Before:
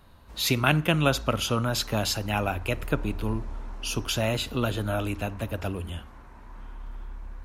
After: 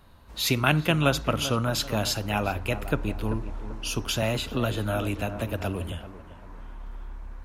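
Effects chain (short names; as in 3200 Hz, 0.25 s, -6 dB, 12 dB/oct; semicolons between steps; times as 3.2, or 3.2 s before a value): on a send: tape echo 0.389 s, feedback 42%, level -11 dB, low-pass 1400 Hz; 4.22–5.92 on the sum: three-band squash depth 40%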